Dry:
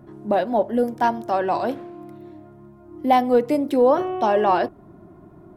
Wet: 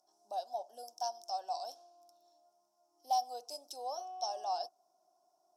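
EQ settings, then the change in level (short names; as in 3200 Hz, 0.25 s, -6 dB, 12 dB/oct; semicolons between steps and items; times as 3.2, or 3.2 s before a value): double band-pass 2000 Hz, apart 2.9 oct; differentiator; high shelf 3900 Hz +7 dB; +7.0 dB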